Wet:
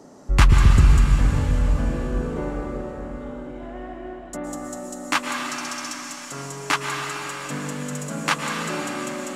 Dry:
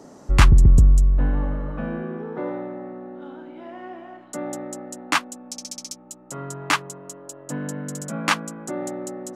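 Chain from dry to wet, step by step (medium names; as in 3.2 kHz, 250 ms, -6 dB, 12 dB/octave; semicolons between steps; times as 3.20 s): plate-style reverb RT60 4.9 s, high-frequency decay 1×, pre-delay 100 ms, DRR 0.5 dB; trim -1.5 dB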